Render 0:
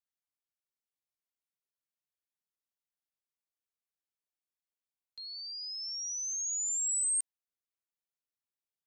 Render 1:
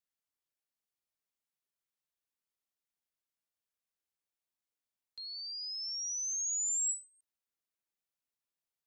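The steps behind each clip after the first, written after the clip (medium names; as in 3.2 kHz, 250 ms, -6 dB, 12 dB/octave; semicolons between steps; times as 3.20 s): endings held to a fixed fall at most 200 dB/s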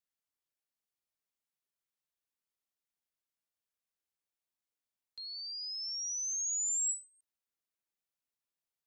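no audible change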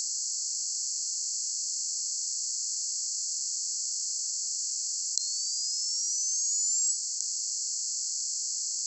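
spectral levelling over time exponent 0.2; trim +2 dB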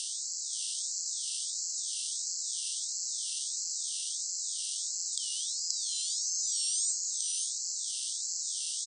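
delay 529 ms -4 dB; ring modulator with a swept carrier 810 Hz, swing 90%, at 1.5 Hz; trim -1.5 dB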